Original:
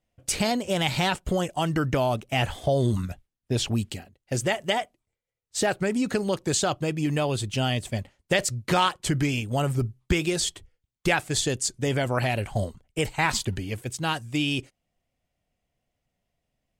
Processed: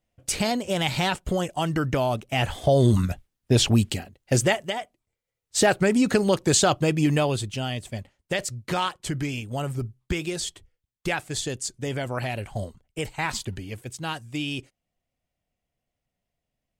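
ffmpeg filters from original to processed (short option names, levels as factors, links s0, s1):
-af "volume=7.08,afade=t=in:st=2.37:d=0.68:silence=0.473151,afade=t=out:st=4.36:d=0.37:silence=0.251189,afade=t=in:st=4.73:d=0.86:silence=0.298538,afade=t=out:st=7.03:d=0.56:silence=0.354813"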